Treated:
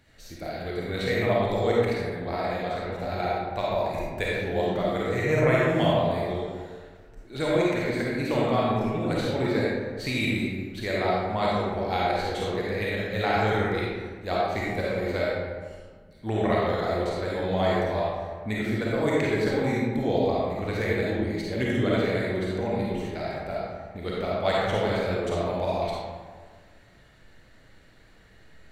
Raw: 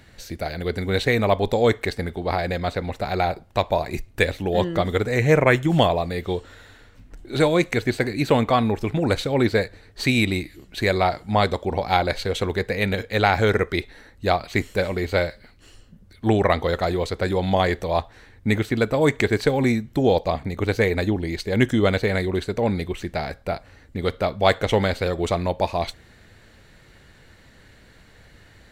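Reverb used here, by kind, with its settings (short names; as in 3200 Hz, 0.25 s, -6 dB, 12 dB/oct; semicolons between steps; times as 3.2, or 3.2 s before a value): digital reverb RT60 1.6 s, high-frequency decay 0.5×, pre-delay 10 ms, DRR -6 dB; gain -11.5 dB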